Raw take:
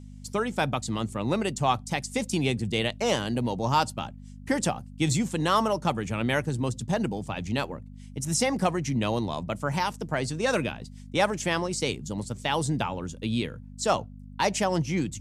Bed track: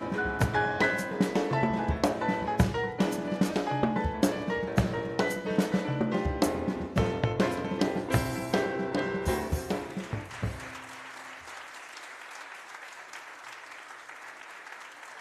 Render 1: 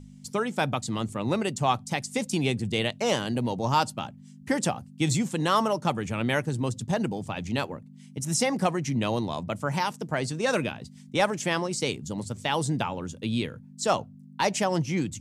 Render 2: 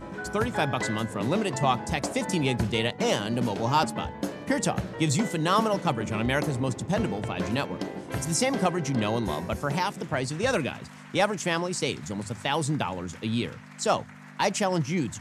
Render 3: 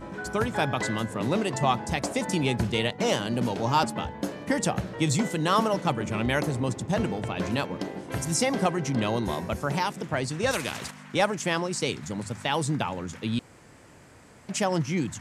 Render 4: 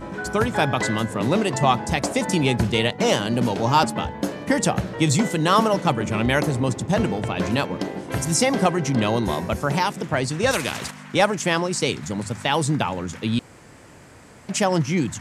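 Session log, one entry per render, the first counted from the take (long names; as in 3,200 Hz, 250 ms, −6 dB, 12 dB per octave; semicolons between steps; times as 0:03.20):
hum removal 50 Hz, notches 2
mix in bed track −6 dB
0:10.51–0:10.91: every bin compressed towards the loudest bin 2 to 1; 0:13.39–0:14.49: fill with room tone
level +5.5 dB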